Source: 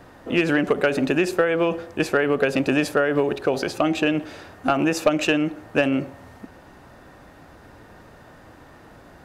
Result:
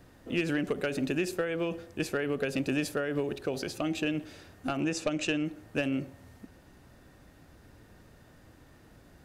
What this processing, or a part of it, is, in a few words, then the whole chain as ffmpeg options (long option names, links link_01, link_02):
smiley-face EQ: -filter_complex "[0:a]lowshelf=frequency=150:gain=4.5,equalizer=frequency=930:width_type=o:width=1.8:gain=-7,highshelf=frequency=5400:gain=5.5,asettb=1/sr,asplit=3[link_01][link_02][link_03];[link_01]atrim=end=4.804[link_04];[link_02]atrim=start=4.8:end=5.45,asetpts=PTS-STARTPTS,afade=type=in:duration=0.004:curve=qsin,afade=type=out:start_time=0.646:duration=0.004:curve=qsin,lowpass=frequency=9000:width=0.5412,lowpass=frequency=9000:width=1.3066[link_05];[link_03]atrim=start=5.446[link_06];[link_04][link_05]acrossfade=duration=0.004:curve1=hsin:curve2=qsin[link_07];[link_07][link_06]acrossfade=duration=0.004:curve1=qsin:curve2=hsin,volume=-8.5dB"